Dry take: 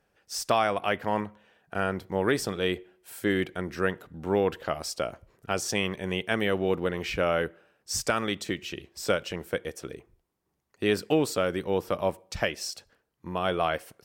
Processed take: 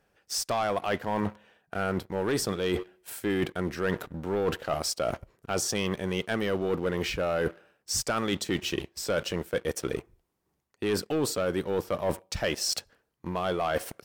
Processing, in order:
dynamic equaliser 2,300 Hz, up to −4 dB, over −43 dBFS, Q 1.9
leveller curve on the samples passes 2
reversed playback
downward compressor 6 to 1, threshold −32 dBFS, peak gain reduction 15.5 dB
reversed playback
level +5.5 dB

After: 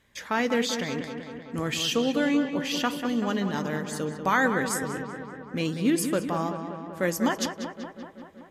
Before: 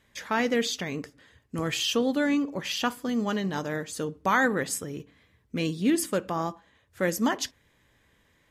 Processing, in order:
feedback echo with a low-pass in the loop 191 ms, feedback 70%, low-pass 3,600 Hz, level −8 dB

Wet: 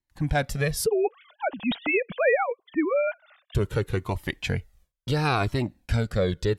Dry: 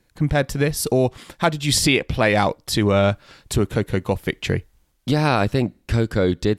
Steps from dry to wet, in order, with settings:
0:00.86–0:03.55: three sine waves on the formant tracks
noise gate with hold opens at −48 dBFS
parametric band 270 Hz −2.5 dB 1.1 octaves
flanger whose copies keep moving one way falling 0.72 Hz

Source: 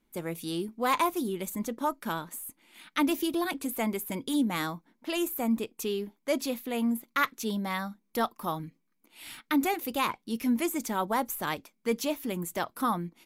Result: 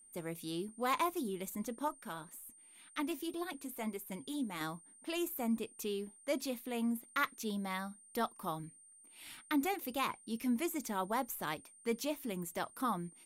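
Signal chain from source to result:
0:01.88–0:04.61: flanger 1.9 Hz, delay 1.9 ms, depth 6.2 ms, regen +63%
steady tone 8,800 Hz −51 dBFS
level −7 dB

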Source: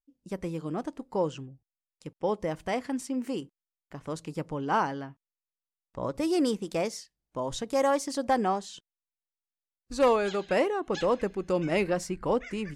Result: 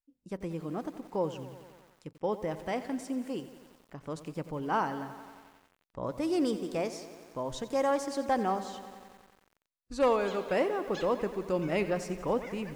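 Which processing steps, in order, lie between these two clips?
high-shelf EQ 4,100 Hz −4.5 dB
feedback echo at a low word length 90 ms, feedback 80%, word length 8 bits, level −14 dB
level −3 dB

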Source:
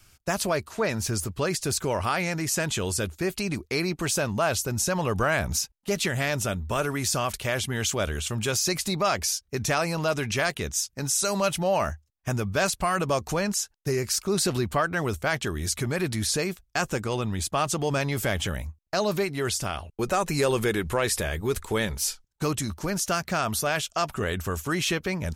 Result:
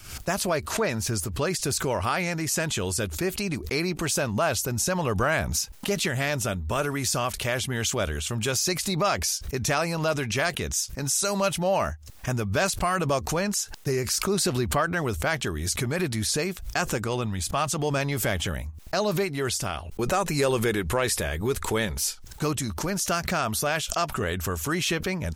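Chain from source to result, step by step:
0:17.26–0:17.76: parametric band 370 Hz −6.5 dB 0.74 octaves
background raised ahead of every attack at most 84 dB per second

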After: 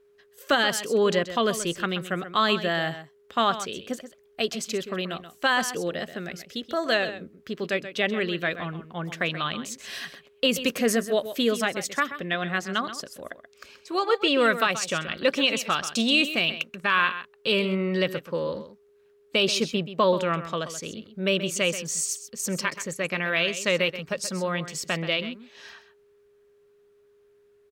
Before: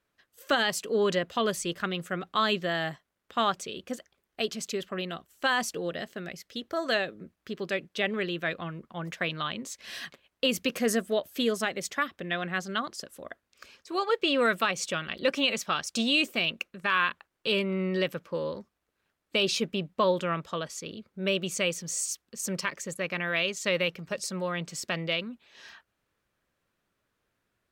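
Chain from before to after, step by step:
single-tap delay 130 ms −12 dB
steady tone 410 Hz −61 dBFS
level +3.5 dB

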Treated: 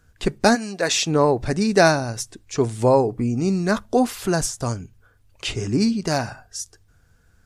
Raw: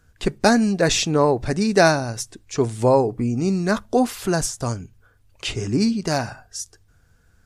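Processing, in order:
0:00.54–0:01.06: high-pass filter 1,000 Hz → 460 Hz 6 dB per octave

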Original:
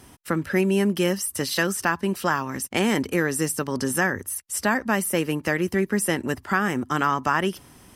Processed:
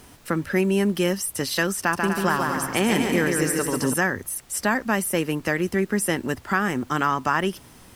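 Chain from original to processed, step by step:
background noise pink −53 dBFS
0:01.79–0:03.94: bouncing-ball delay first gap 140 ms, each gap 0.75×, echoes 5

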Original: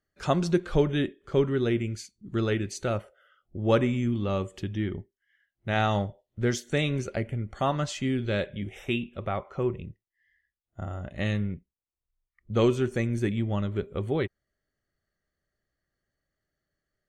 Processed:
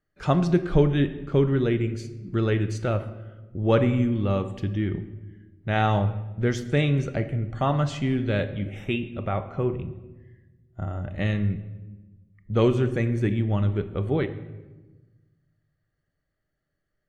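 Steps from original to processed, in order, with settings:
bass and treble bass +3 dB, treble −8 dB
rectangular room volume 710 cubic metres, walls mixed, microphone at 0.48 metres
level +1.5 dB

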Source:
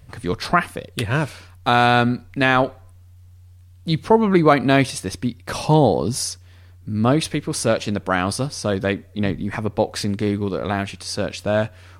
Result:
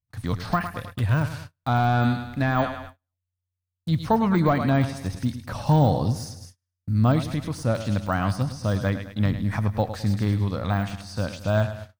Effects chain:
high-shelf EQ 8,700 Hz +11 dB
repeating echo 105 ms, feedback 49%, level −12.5 dB
noise gate −35 dBFS, range −41 dB
de-essing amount 80%
graphic EQ with 15 bands 100 Hz +7 dB, 400 Hz −11 dB, 2,500 Hz −4 dB, 10,000 Hz −7 dB
level −2 dB

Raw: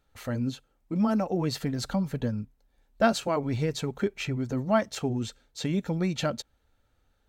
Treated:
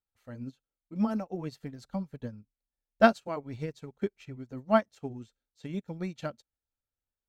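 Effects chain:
expander for the loud parts 2.5 to 1, over −38 dBFS
level +4 dB

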